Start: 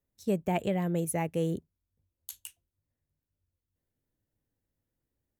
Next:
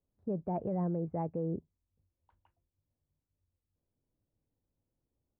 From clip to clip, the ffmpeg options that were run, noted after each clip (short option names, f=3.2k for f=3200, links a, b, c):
-af "lowpass=f=1.1k:w=0.5412,lowpass=f=1.1k:w=1.3066,alimiter=level_in=3dB:limit=-24dB:level=0:latency=1:release=33,volume=-3dB"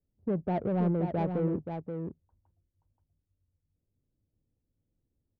-af "adynamicsmooth=sensitivity=3.5:basefreq=510,aecho=1:1:528:0.473,volume=5dB"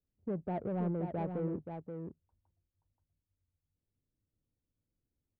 -af "bass=f=250:g=-1,treble=f=4k:g=-13,volume=-6dB"